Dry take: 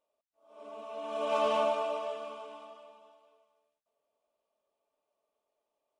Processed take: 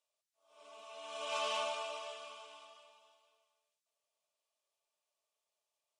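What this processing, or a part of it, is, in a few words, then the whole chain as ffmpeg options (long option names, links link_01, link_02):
piezo pickup straight into a mixer: -af "lowpass=7000,aderivative,volume=9.5dB"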